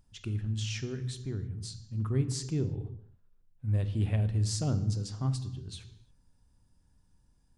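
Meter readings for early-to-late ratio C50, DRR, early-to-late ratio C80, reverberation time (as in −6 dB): 13.0 dB, 10.0 dB, 15.0 dB, non-exponential decay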